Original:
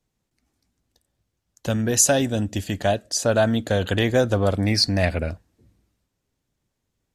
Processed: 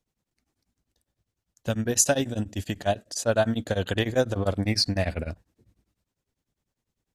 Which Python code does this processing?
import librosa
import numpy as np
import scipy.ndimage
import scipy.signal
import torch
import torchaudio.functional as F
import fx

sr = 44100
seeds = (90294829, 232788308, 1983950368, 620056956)

y = x * np.abs(np.cos(np.pi * 10.0 * np.arange(len(x)) / sr))
y = y * 10.0 ** (-2.0 / 20.0)